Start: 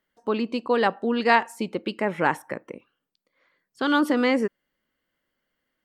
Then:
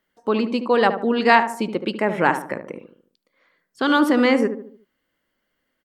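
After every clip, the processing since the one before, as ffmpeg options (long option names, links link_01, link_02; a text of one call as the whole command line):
ffmpeg -i in.wav -filter_complex "[0:a]bandreject=frequency=50:width_type=h:width=6,bandreject=frequency=100:width_type=h:width=6,bandreject=frequency=150:width_type=h:width=6,asplit=2[link_01][link_02];[link_02]adelay=74,lowpass=frequency=1100:poles=1,volume=-8dB,asplit=2[link_03][link_04];[link_04]adelay=74,lowpass=frequency=1100:poles=1,volume=0.47,asplit=2[link_05][link_06];[link_06]adelay=74,lowpass=frequency=1100:poles=1,volume=0.47,asplit=2[link_07][link_08];[link_08]adelay=74,lowpass=frequency=1100:poles=1,volume=0.47,asplit=2[link_09][link_10];[link_10]adelay=74,lowpass=frequency=1100:poles=1,volume=0.47[link_11];[link_03][link_05][link_07][link_09][link_11]amix=inputs=5:normalize=0[link_12];[link_01][link_12]amix=inputs=2:normalize=0,volume=4dB" out.wav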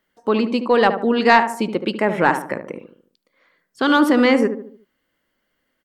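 ffmpeg -i in.wav -af "asoftclip=type=tanh:threshold=-2.5dB,volume=2.5dB" out.wav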